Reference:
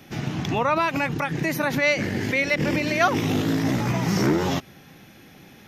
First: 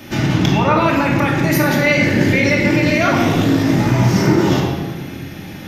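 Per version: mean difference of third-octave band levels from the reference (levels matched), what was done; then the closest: 4.5 dB: in parallel at -1 dB: compressor with a negative ratio -29 dBFS, ratio -0.5; on the sum: simulated room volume 1300 m³, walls mixed, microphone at 2.6 m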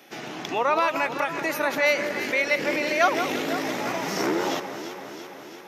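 6.5 dB: Chebyshev high-pass 450 Hz, order 2; on a send: echo whose repeats swap between lows and highs 168 ms, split 1.7 kHz, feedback 80%, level -8 dB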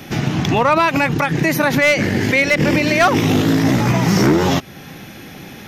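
1.5 dB: in parallel at +0.5 dB: compression 10:1, threshold -34 dBFS, peak gain reduction 19.5 dB; on the sum: hard clipper -13.5 dBFS, distortion -21 dB; trim +6.5 dB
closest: third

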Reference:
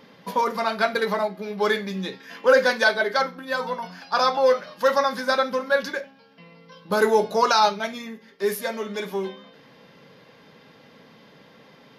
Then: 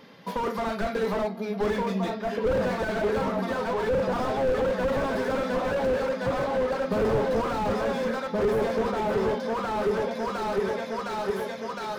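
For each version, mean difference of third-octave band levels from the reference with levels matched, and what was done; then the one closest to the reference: 11.5 dB: delay with an opening low-pass 711 ms, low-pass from 200 Hz, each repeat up 2 oct, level 0 dB; slew-rate limiter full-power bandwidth 40 Hz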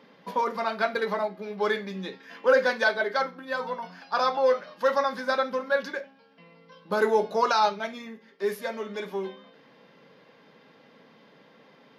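2.0 dB: high-pass 180 Hz 12 dB/octave; treble shelf 5.7 kHz -11 dB; trim -3.5 dB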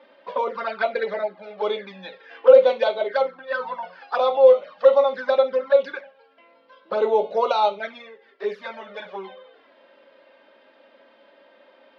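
8.0 dB: touch-sensitive flanger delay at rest 3.5 ms, full sweep at -18 dBFS; cabinet simulation 370–3700 Hz, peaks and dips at 540 Hz +10 dB, 770 Hz +4 dB, 1.4 kHz +4 dB; trim -1 dB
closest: second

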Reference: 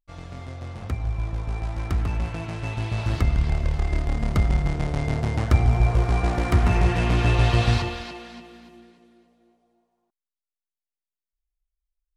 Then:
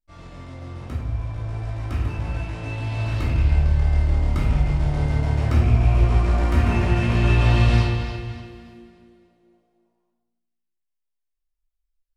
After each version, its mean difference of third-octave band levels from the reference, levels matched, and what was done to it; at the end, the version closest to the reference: 3.5 dB: rattle on loud lows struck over -16 dBFS, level -24 dBFS; simulated room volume 320 m³, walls mixed, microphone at 2.7 m; trim -8.5 dB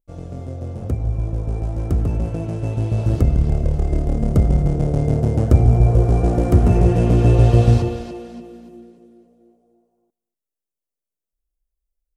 6.5 dB: graphic EQ 125/250/500/1000/2000/4000 Hz +4/+3/+8/-8/-11/-10 dB; on a send: delay 240 ms -23 dB; on the sum: trim +3.5 dB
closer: first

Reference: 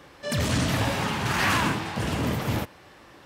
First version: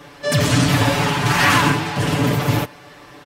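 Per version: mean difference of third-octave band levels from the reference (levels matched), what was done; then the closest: 1.0 dB: comb 6.9 ms, depth 86%; trim +6 dB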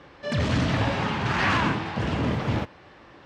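4.5 dB: distance through air 150 m; trim +1.5 dB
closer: first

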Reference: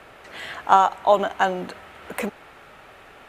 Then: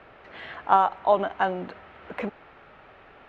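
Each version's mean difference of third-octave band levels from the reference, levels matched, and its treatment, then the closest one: 3.0 dB: distance through air 270 m; trim -2.5 dB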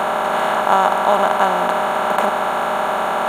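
11.0 dB: spectral levelling over time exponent 0.2; trim -3 dB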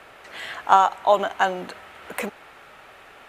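1.5 dB: bass shelf 410 Hz -6.5 dB; trim +1 dB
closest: third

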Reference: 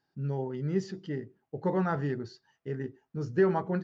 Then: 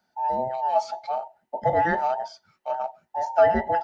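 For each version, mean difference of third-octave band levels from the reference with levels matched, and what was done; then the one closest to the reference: 11.0 dB: every band turned upside down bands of 1 kHz; bass shelf 68 Hz -6.5 dB; trim +6.5 dB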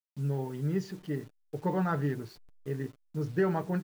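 5.0 dB: send-on-delta sampling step -50 dBFS; comb 6.7 ms, depth 37%; trim -1 dB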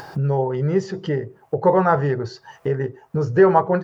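3.0 dB: graphic EQ 125/250/500/1000/4000 Hz +4/-9/+8/+7/-3 dB; upward compressor, threshold -25 dBFS; trim +8.5 dB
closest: third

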